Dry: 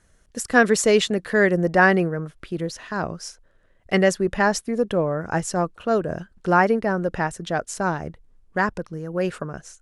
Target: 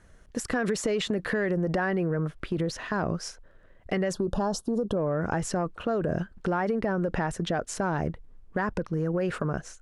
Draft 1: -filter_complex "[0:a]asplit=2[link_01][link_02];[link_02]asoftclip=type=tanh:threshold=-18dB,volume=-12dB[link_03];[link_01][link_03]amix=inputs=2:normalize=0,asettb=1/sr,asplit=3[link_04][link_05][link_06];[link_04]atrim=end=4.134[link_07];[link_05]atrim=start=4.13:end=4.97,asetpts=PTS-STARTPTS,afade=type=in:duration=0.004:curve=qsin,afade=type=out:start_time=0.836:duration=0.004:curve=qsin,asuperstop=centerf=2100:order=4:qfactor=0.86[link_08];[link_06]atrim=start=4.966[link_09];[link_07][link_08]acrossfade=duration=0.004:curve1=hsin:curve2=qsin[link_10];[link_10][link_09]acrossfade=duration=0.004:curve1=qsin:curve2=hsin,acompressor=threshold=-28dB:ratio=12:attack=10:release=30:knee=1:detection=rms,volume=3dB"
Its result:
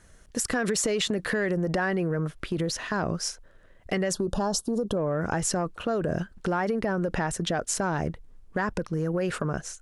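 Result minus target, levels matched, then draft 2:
8,000 Hz band +7.0 dB
-filter_complex "[0:a]asplit=2[link_01][link_02];[link_02]asoftclip=type=tanh:threshold=-18dB,volume=-12dB[link_03];[link_01][link_03]amix=inputs=2:normalize=0,asettb=1/sr,asplit=3[link_04][link_05][link_06];[link_04]atrim=end=4.134[link_07];[link_05]atrim=start=4.13:end=4.97,asetpts=PTS-STARTPTS,afade=type=in:duration=0.004:curve=qsin,afade=type=out:start_time=0.836:duration=0.004:curve=qsin,asuperstop=centerf=2100:order=4:qfactor=0.86[link_08];[link_06]atrim=start=4.966[link_09];[link_07][link_08]acrossfade=duration=0.004:curve1=hsin:curve2=qsin[link_10];[link_10][link_09]acrossfade=duration=0.004:curve1=qsin:curve2=hsin,acompressor=threshold=-28dB:ratio=12:attack=10:release=30:knee=1:detection=rms,highshelf=frequency=4000:gain=-10.5,volume=3dB"

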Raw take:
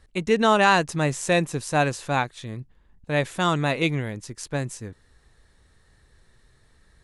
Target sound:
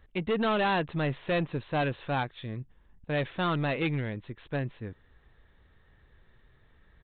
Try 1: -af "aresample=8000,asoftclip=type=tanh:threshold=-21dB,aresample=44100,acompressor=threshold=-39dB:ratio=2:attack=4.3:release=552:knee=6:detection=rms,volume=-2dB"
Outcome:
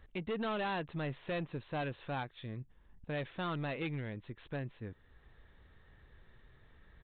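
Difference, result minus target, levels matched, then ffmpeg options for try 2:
downward compressor: peak gain reduction +9.5 dB
-af "aresample=8000,asoftclip=type=tanh:threshold=-21dB,aresample=44100,volume=-2dB"

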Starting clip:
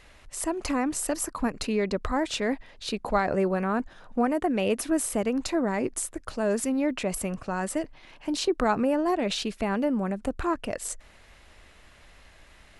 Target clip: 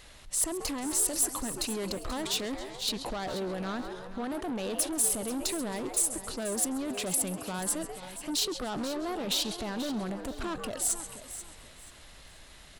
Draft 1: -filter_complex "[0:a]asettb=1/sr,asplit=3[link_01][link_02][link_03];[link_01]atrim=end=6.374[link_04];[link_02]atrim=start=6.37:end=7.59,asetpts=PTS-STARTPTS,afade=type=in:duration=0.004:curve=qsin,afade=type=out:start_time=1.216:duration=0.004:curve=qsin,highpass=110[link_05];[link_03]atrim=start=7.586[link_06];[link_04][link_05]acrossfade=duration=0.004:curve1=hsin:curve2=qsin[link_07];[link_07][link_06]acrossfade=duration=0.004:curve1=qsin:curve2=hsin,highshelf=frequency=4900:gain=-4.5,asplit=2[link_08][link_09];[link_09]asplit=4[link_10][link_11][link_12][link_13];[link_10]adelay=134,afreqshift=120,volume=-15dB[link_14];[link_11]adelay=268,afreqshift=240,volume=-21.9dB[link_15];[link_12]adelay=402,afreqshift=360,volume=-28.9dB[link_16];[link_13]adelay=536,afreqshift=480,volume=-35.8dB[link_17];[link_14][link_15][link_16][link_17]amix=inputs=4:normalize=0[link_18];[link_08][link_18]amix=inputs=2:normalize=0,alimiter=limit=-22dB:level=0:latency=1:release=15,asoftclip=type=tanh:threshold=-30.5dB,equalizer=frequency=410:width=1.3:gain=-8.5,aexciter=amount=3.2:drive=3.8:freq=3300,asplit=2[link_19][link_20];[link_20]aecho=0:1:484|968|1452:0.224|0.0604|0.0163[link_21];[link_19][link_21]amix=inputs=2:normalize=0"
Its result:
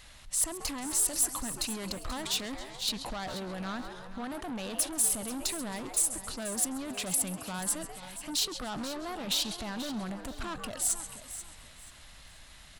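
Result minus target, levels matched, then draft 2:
500 Hz band −5.0 dB
-filter_complex "[0:a]asettb=1/sr,asplit=3[link_01][link_02][link_03];[link_01]atrim=end=6.374[link_04];[link_02]atrim=start=6.37:end=7.59,asetpts=PTS-STARTPTS,afade=type=in:duration=0.004:curve=qsin,afade=type=out:start_time=1.216:duration=0.004:curve=qsin,highpass=110[link_05];[link_03]atrim=start=7.586[link_06];[link_04][link_05]acrossfade=duration=0.004:curve1=hsin:curve2=qsin[link_07];[link_07][link_06]acrossfade=duration=0.004:curve1=qsin:curve2=hsin,highshelf=frequency=4900:gain=-4.5,asplit=2[link_08][link_09];[link_09]asplit=4[link_10][link_11][link_12][link_13];[link_10]adelay=134,afreqshift=120,volume=-15dB[link_14];[link_11]adelay=268,afreqshift=240,volume=-21.9dB[link_15];[link_12]adelay=402,afreqshift=360,volume=-28.9dB[link_16];[link_13]adelay=536,afreqshift=480,volume=-35.8dB[link_17];[link_14][link_15][link_16][link_17]amix=inputs=4:normalize=0[link_18];[link_08][link_18]amix=inputs=2:normalize=0,alimiter=limit=-22dB:level=0:latency=1:release=15,asoftclip=type=tanh:threshold=-30.5dB,aexciter=amount=3.2:drive=3.8:freq=3300,asplit=2[link_19][link_20];[link_20]aecho=0:1:484|968|1452:0.224|0.0604|0.0163[link_21];[link_19][link_21]amix=inputs=2:normalize=0"

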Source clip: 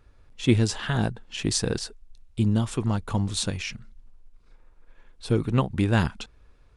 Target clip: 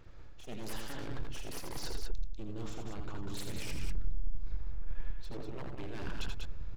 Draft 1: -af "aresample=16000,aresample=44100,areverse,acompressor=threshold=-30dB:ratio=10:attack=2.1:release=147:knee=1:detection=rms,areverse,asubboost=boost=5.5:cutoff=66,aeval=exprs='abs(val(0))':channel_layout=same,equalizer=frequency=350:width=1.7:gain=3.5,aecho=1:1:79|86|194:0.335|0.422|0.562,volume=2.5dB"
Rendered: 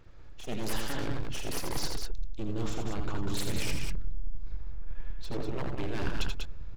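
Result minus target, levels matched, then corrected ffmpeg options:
downward compressor: peak gain reduction −8 dB
-af "aresample=16000,aresample=44100,areverse,acompressor=threshold=-39dB:ratio=10:attack=2.1:release=147:knee=1:detection=rms,areverse,asubboost=boost=5.5:cutoff=66,aeval=exprs='abs(val(0))':channel_layout=same,equalizer=frequency=350:width=1.7:gain=3.5,aecho=1:1:79|86|194:0.335|0.422|0.562,volume=2.5dB"

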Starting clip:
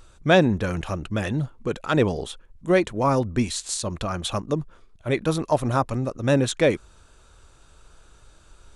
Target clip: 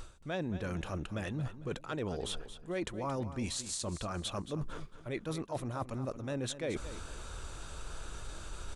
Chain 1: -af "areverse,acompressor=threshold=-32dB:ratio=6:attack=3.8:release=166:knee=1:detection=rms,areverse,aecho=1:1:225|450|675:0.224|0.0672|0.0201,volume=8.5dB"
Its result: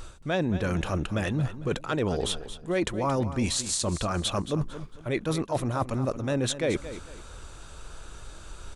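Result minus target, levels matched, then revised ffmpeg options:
downward compressor: peak gain reduction −9.5 dB
-af "areverse,acompressor=threshold=-43.5dB:ratio=6:attack=3.8:release=166:knee=1:detection=rms,areverse,aecho=1:1:225|450|675:0.224|0.0672|0.0201,volume=8.5dB"

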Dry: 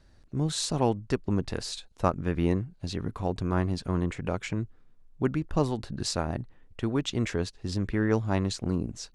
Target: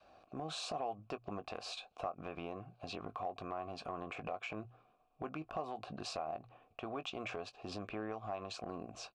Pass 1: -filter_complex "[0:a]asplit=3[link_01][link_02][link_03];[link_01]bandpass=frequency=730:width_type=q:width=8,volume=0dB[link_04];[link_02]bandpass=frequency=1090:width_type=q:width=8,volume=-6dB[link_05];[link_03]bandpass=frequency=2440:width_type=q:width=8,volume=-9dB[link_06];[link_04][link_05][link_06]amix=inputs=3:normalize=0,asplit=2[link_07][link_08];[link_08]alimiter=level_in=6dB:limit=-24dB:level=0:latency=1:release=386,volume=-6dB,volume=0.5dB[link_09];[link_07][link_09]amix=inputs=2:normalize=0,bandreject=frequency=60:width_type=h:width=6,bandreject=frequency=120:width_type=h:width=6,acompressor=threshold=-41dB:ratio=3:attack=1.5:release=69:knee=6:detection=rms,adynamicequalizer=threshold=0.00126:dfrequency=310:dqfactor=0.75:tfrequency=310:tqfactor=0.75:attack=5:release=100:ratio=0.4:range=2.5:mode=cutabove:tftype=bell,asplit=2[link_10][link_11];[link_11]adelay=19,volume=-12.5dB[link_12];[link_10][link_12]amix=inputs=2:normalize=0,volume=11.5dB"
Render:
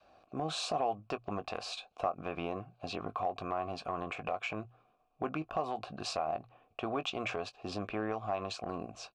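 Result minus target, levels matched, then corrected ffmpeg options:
downward compressor: peak gain reduction −7.5 dB
-filter_complex "[0:a]asplit=3[link_01][link_02][link_03];[link_01]bandpass=frequency=730:width_type=q:width=8,volume=0dB[link_04];[link_02]bandpass=frequency=1090:width_type=q:width=8,volume=-6dB[link_05];[link_03]bandpass=frequency=2440:width_type=q:width=8,volume=-9dB[link_06];[link_04][link_05][link_06]amix=inputs=3:normalize=0,asplit=2[link_07][link_08];[link_08]alimiter=level_in=6dB:limit=-24dB:level=0:latency=1:release=386,volume=-6dB,volume=0.5dB[link_09];[link_07][link_09]amix=inputs=2:normalize=0,bandreject=frequency=60:width_type=h:width=6,bandreject=frequency=120:width_type=h:width=6,acompressor=threshold=-52dB:ratio=3:attack=1.5:release=69:knee=6:detection=rms,adynamicequalizer=threshold=0.00126:dfrequency=310:dqfactor=0.75:tfrequency=310:tqfactor=0.75:attack=5:release=100:ratio=0.4:range=2.5:mode=cutabove:tftype=bell,asplit=2[link_10][link_11];[link_11]adelay=19,volume=-12.5dB[link_12];[link_10][link_12]amix=inputs=2:normalize=0,volume=11.5dB"

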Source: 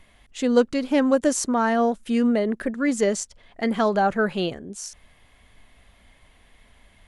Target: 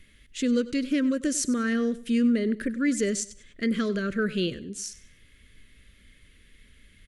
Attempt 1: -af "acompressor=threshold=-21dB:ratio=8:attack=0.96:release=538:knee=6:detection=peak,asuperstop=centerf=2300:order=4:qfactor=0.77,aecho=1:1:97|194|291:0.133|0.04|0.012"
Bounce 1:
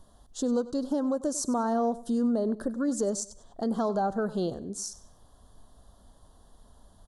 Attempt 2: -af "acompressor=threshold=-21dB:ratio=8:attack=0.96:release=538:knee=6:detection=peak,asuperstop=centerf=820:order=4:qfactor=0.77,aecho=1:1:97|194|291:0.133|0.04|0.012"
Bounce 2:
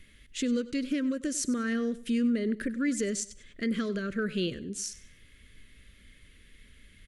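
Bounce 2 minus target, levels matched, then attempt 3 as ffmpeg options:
downward compressor: peak gain reduction +6 dB
-af "acompressor=threshold=-14dB:ratio=8:attack=0.96:release=538:knee=6:detection=peak,asuperstop=centerf=820:order=4:qfactor=0.77,aecho=1:1:97|194|291:0.133|0.04|0.012"

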